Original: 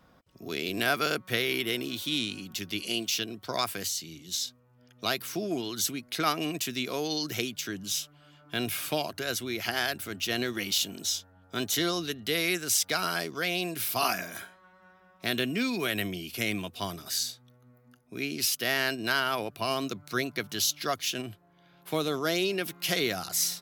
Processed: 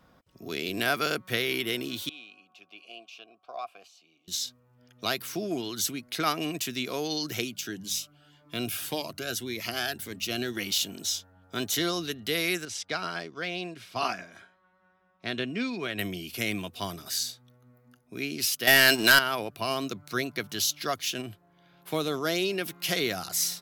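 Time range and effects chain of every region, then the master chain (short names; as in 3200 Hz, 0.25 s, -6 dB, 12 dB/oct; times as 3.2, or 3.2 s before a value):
2.09–4.28 vowel filter a + low shelf 92 Hz -8.5 dB
7.44–10.57 notches 50/100/150/200 Hz + cascading phaser rising 1.8 Hz
12.65–15.99 air absorption 100 m + upward expander, over -42 dBFS
18.67–19.19 HPF 370 Hz 6 dB/oct + high shelf 3800 Hz +6 dB + sample leveller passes 3
whole clip: dry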